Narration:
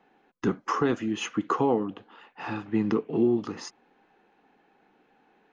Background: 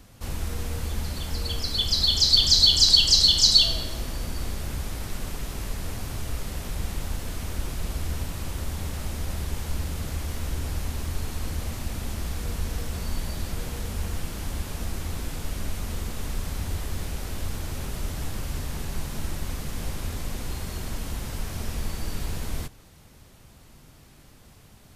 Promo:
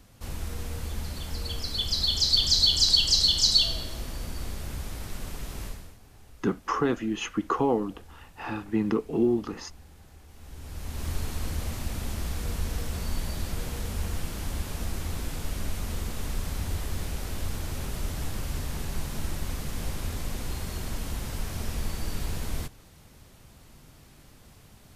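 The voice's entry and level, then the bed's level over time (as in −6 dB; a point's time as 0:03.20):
6.00 s, −0.5 dB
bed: 0:05.66 −4 dB
0:06.00 −21 dB
0:10.26 −21 dB
0:11.08 −1 dB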